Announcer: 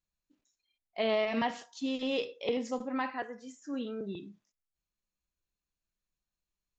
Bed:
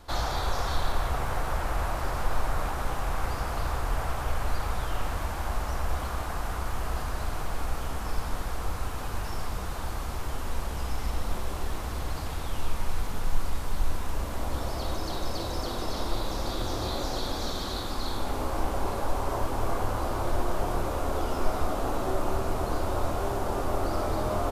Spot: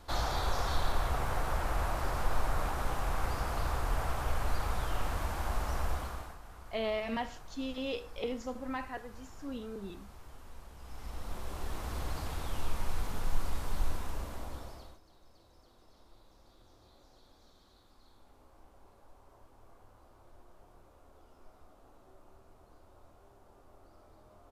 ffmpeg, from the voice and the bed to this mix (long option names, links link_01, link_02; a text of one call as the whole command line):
ffmpeg -i stem1.wav -i stem2.wav -filter_complex "[0:a]adelay=5750,volume=-4.5dB[link_01];[1:a]volume=11dB,afade=type=out:start_time=5.84:duration=0.54:silence=0.16788,afade=type=in:start_time=10.79:duration=1.19:silence=0.188365,afade=type=out:start_time=13.83:duration=1.17:silence=0.0473151[link_02];[link_01][link_02]amix=inputs=2:normalize=0" out.wav